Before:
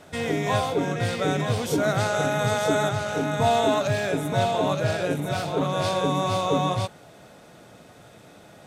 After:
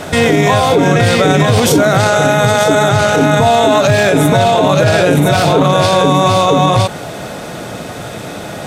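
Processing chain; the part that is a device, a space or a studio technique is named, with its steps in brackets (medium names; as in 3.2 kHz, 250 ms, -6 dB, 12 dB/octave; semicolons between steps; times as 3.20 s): loud club master (compression 2:1, threshold -25 dBFS, peak gain reduction 5 dB; hard clipper -16 dBFS, distortion -41 dB; loudness maximiser +24.5 dB); trim -1 dB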